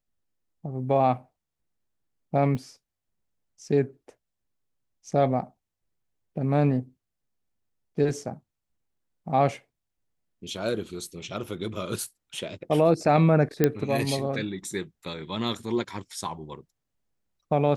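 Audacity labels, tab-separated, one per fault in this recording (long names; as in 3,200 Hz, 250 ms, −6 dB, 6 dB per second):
2.550000	2.550000	drop-out 3 ms
11.440000	11.440000	drop-out 3 ms
13.640000	13.640000	click −7 dBFS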